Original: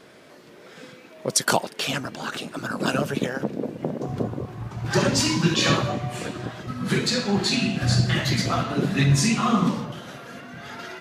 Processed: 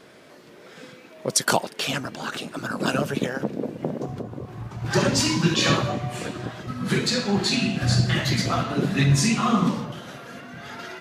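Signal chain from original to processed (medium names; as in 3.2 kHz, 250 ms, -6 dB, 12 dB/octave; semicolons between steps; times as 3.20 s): 4.05–4.82 s: compression 4:1, threshold -30 dBFS, peak gain reduction 9.5 dB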